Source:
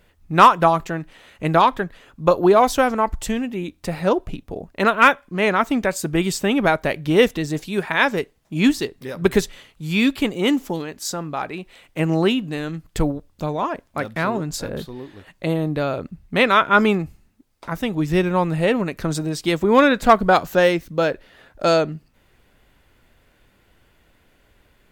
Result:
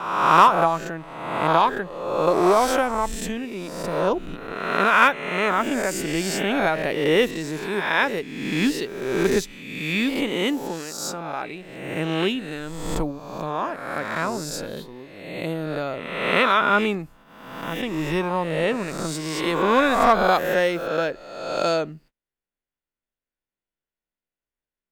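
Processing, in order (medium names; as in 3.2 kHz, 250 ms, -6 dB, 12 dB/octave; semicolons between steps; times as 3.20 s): reverse spectral sustain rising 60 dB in 1.15 s; gate -43 dBFS, range -32 dB; peaking EQ 74 Hz -15 dB 0.89 oct; trim -6 dB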